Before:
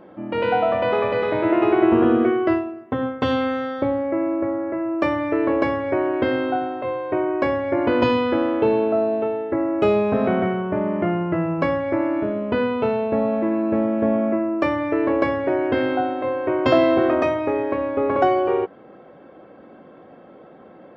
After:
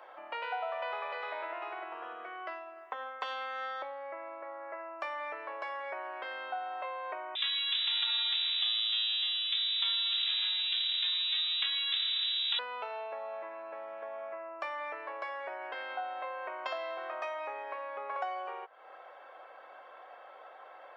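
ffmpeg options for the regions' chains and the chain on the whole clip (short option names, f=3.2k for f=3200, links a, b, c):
-filter_complex "[0:a]asettb=1/sr,asplit=3[a][b][c];[a]atrim=end=7.354[d];[b]atrim=start=7.35:end=12.59,asetpts=PTS-STARTPTS,afade=t=in:d=0.004:c=qsin,afade=t=out:st=5.236:d=0.004:c=qsin,aeval=exprs='max(val(0),0)':c=same,lowpass=f=3.3k:t=q:w=0.5098,lowpass=f=3.3k:t=q:w=0.6013,lowpass=f=3.3k:t=q:w=0.9,lowpass=f=3.3k:t=q:w=2.563,afreqshift=-3900[e];[c]atrim=start=12.586[f];[d][e]acrossfade=d=0.004:c1=hsin:c2=qsin[g];[g][f]acrossfade=d=0.004:c1=qsin:c2=hsin,acompressor=threshold=-31dB:ratio=6,highpass=f=730:w=0.5412,highpass=f=730:w=1.3066,volume=1.5dB"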